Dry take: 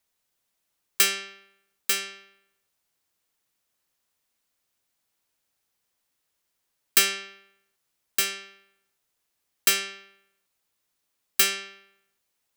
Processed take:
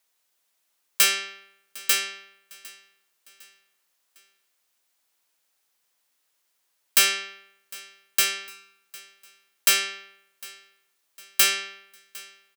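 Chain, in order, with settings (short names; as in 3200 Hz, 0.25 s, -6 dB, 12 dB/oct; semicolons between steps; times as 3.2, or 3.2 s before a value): HPF 550 Hz 6 dB/oct; soft clip -15.5 dBFS, distortion -12 dB; feedback echo 0.755 s, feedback 46%, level -22 dB; gain +5 dB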